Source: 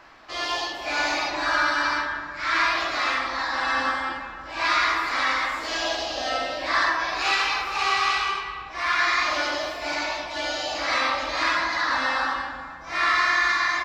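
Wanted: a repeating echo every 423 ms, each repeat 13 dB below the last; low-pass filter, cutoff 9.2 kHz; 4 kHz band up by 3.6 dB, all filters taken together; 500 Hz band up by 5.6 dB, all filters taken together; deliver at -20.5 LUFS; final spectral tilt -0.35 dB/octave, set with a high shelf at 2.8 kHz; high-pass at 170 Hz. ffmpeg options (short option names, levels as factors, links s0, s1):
-af "highpass=170,lowpass=9200,equalizer=f=500:t=o:g=7.5,highshelf=f=2800:g=-3.5,equalizer=f=4000:t=o:g=7,aecho=1:1:423|846|1269:0.224|0.0493|0.0108,volume=1.19"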